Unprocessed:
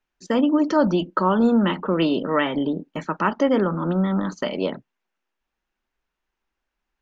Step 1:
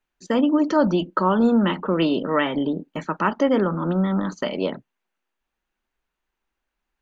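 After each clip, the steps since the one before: band-stop 5.3 kHz, Q 13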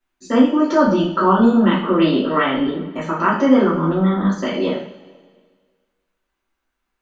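two-slope reverb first 0.45 s, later 1.7 s, from -17 dB, DRR -8.5 dB; trim -4 dB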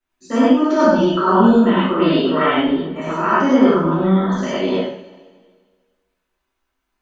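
gated-style reverb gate 130 ms rising, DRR -5 dB; trim -4.5 dB

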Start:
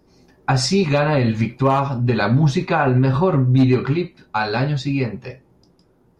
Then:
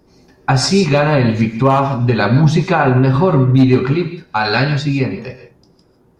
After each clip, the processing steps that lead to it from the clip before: time-frequency box 4.45–4.70 s, 1.3–8 kHz +6 dB; gated-style reverb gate 180 ms rising, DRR 9 dB; trim +4 dB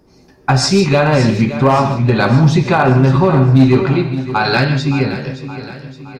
overload inside the chain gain 5 dB; on a send: feedback delay 569 ms, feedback 51%, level -13 dB; on the sum: trim +1 dB

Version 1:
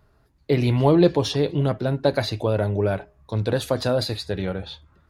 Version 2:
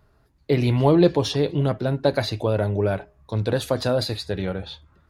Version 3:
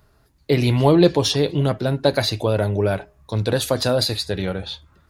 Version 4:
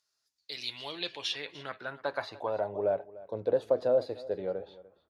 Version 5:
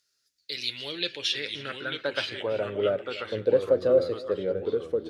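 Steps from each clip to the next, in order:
no audible change
treble shelf 3.5 kHz +8.5 dB; trim +2 dB
band-pass sweep 5.9 kHz -> 530 Hz, 0.27–3.04 s; delay 296 ms -19 dB; trim -3.5 dB
high-order bell 870 Hz -12 dB 1 oct; ever faster or slower copies 771 ms, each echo -2 st, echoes 2, each echo -6 dB; trim +6 dB

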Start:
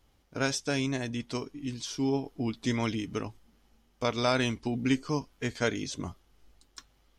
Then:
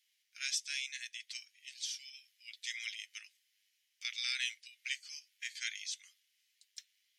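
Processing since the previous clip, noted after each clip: steep high-pass 1.9 kHz 48 dB/octave; trim -1.5 dB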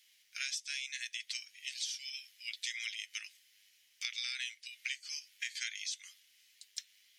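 compression 6:1, threshold -47 dBFS, peak gain reduction 15.5 dB; trim +10.5 dB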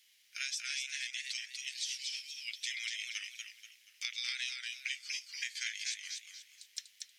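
modulated delay 239 ms, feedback 35%, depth 116 cents, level -4 dB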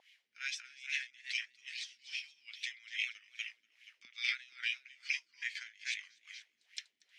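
wow and flutter 16 cents; LFO band-pass sine 2.4 Hz 230–2500 Hz; trim +9 dB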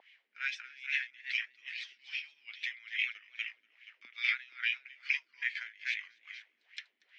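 band-pass 290–2200 Hz; trim +8 dB

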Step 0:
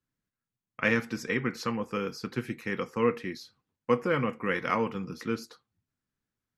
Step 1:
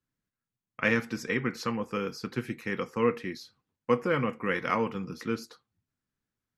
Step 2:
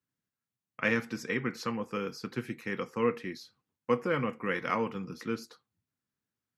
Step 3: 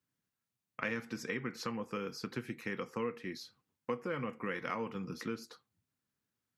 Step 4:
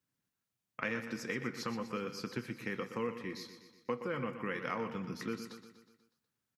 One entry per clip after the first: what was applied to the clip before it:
no audible change
high-pass 88 Hz; trim -2.5 dB
compression 3:1, threshold -38 dBFS, peak gain reduction 12.5 dB; trim +1.5 dB
feedback delay 122 ms, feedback 55%, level -10.5 dB

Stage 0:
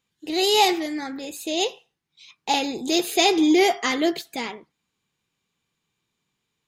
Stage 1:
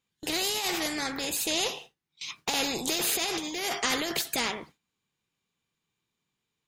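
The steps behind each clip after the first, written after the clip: gate with hold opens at -41 dBFS; compressor with a negative ratio -24 dBFS, ratio -1; spectrum-flattening compressor 2:1; trim -2.5 dB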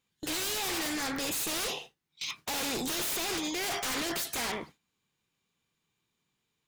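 in parallel at -1 dB: peak limiter -20.5 dBFS, peak gain reduction 7 dB; on the sum: wavefolder -24 dBFS; trim -3.5 dB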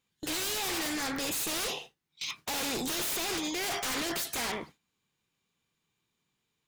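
no audible change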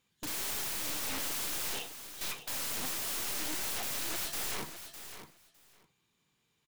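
Chebyshev shaper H 6 -13 dB, 8 -19 dB, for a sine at -27 dBFS; integer overflow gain 34.5 dB; feedback delay 607 ms, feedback 15%, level -10.5 dB; trim +3.5 dB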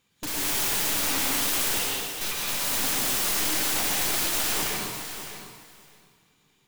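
reverberation RT60 1.5 s, pre-delay 102 ms, DRR -3 dB; trim +6 dB

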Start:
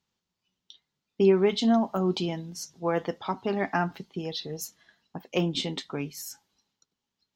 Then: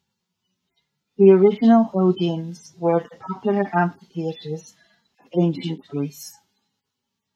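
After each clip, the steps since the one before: harmonic-percussive separation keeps harmonic; trim +8.5 dB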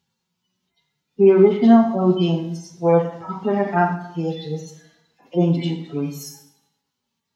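plate-style reverb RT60 0.74 s, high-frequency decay 0.85×, DRR 3 dB

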